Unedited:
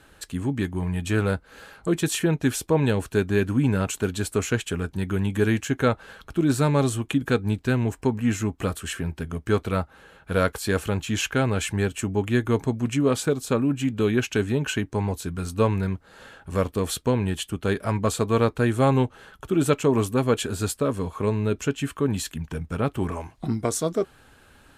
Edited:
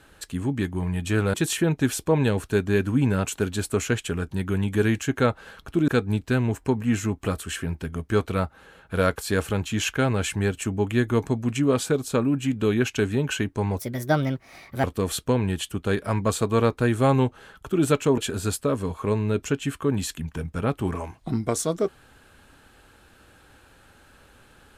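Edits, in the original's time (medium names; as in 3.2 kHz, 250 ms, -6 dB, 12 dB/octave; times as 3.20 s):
1.34–1.96 s: delete
6.50–7.25 s: delete
15.15–16.62 s: speed 139%
19.96–20.34 s: delete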